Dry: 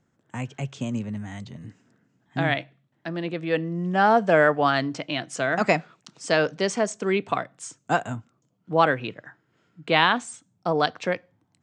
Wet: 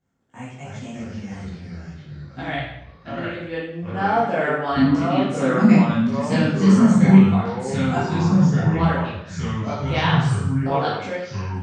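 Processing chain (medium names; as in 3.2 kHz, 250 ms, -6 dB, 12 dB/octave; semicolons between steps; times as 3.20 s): 4.76–7.18 s: resonant low shelf 340 Hz +13 dB, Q 3; ever faster or slower copies 239 ms, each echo -3 st, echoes 3; reverberation RT60 0.75 s, pre-delay 6 ms, DRR -9.5 dB; trim -12.5 dB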